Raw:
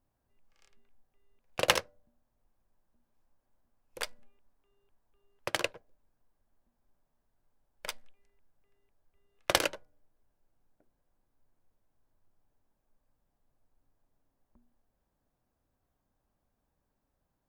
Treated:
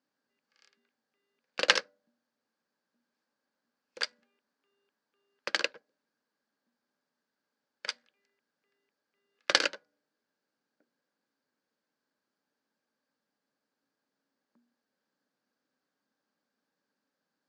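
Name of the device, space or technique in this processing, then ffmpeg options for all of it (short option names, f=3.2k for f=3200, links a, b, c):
television speaker: -af "highpass=f=220:w=0.5412,highpass=f=220:w=1.3066,equalizer=f=360:t=q:w=4:g=-6,equalizer=f=690:t=q:w=4:g=-9,equalizer=f=980:t=q:w=4:g=-5,equalizer=f=1.6k:t=q:w=4:g=6,equalizer=f=4.6k:t=q:w=4:g=8,lowpass=f=6.8k:w=0.5412,lowpass=f=6.8k:w=1.3066,volume=1dB"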